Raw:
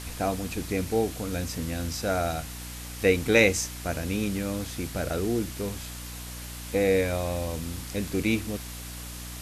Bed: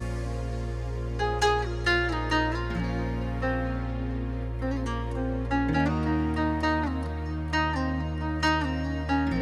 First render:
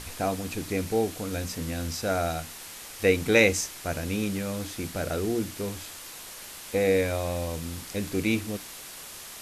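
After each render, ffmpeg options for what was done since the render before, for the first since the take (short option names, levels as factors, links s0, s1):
-af "bandreject=f=60:t=h:w=6,bandreject=f=120:t=h:w=6,bandreject=f=180:t=h:w=6,bandreject=f=240:t=h:w=6,bandreject=f=300:t=h:w=6"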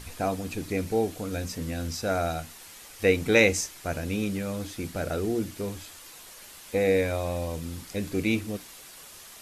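-af "afftdn=nr=6:nf=-43"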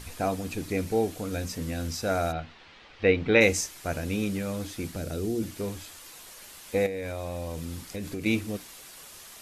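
-filter_complex "[0:a]asplit=3[s0][s1][s2];[s0]afade=t=out:st=2.31:d=0.02[s3];[s1]lowpass=f=3800:w=0.5412,lowpass=f=3800:w=1.3066,afade=t=in:st=2.31:d=0.02,afade=t=out:st=3.4:d=0.02[s4];[s2]afade=t=in:st=3.4:d=0.02[s5];[s3][s4][s5]amix=inputs=3:normalize=0,asettb=1/sr,asplit=3[s6][s7][s8];[s6]atrim=end=4.924[s9];[s7]atrim=start=4.92:end=5.43,asetpts=PTS-STARTPTS,afade=t=in:d=0.004:c=qsin,afade=t=out:st=0.506:d=0.004:c=qsin,acrossover=split=430|3000[s10][s11][s12];[s11]acompressor=threshold=0.00891:ratio=6:attack=3.2:release=140:knee=2.83:detection=peak[s13];[s10][s13][s12]amix=inputs=3:normalize=0[s14];[s8]atrim=start=5.426[s15];[s9][s14]acrossfade=d=0.004:c1=hsin:c2=qsin[s16];[s16][s15]acrossfade=d=0.004:c1=qsin:c2=hsin,asettb=1/sr,asplit=3[s17][s18][s19];[s17]atrim=end=6.864[s20];[s18]atrim=start=6.86:end=8.26,asetpts=PTS-STARTPTS,afade=t=in:d=0.004:c=qsin,afade=t=out:st=1.396:d=0.004:c=qsin,acompressor=threshold=0.0316:ratio=8:attack=3.2:release=140:knee=1:detection=peak[s21];[s19]atrim=start=8.256[s22];[s20][s21]acrossfade=d=0.004:c1=hsin:c2=qsin[s23];[s23][s22]acrossfade=d=0.004:c1=qsin:c2=hsin"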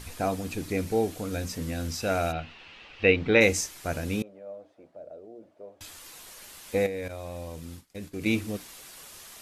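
-filter_complex "[0:a]asettb=1/sr,asplit=3[s0][s1][s2];[s0]atrim=end=2.004[s3];[s1]atrim=start=2:end=3.16,asetpts=PTS-STARTPTS,afade=t=in:d=0.004:c=qsin,afade=t=out:st=1.156:d=0.004:c=qsin,equalizer=f=2700:t=o:w=0.28:g=10.5[s4];[s2]atrim=start=3.156[s5];[s3][s4]acrossfade=d=0.004:c1=hsin:c2=qsin[s6];[s6][s5]acrossfade=d=0.004:c1=qsin:c2=hsin,asettb=1/sr,asplit=3[s7][s8][s9];[s7]atrim=end=4.224[s10];[s8]atrim=start=4.22:end=5.81,asetpts=PTS-STARTPTS,afade=t=in:d=0.004:c=qsin,afade=t=out:st=1.586:d=0.004:c=qsin,bandpass=f=610:t=q:w=6.5[s11];[s9]atrim=start=5.806[s12];[s10][s11]acrossfade=d=0.004:c1=hsin:c2=qsin[s13];[s13][s12]acrossfade=d=0.004:c1=qsin:c2=hsin,asettb=1/sr,asplit=3[s14][s15][s16];[s14]atrim=end=7.084[s17];[s15]atrim=start=7.08:end=8.16,asetpts=PTS-STARTPTS,afade=t=in:d=0.004:c=qsin,afade=t=out:st=1.076:d=0.004:c=qsin,agate=range=0.0224:threshold=0.0282:ratio=3:release=100:detection=peak[s18];[s16]atrim=start=8.156[s19];[s17][s18]acrossfade=d=0.004:c1=hsin:c2=qsin[s20];[s20][s19]acrossfade=d=0.004:c1=qsin:c2=hsin"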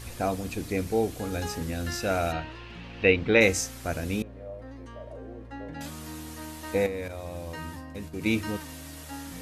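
-filter_complex "[1:a]volume=0.188[s0];[0:a][s0]amix=inputs=2:normalize=0"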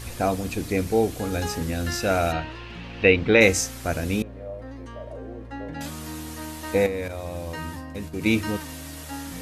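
-af "volume=1.68,alimiter=limit=0.708:level=0:latency=1"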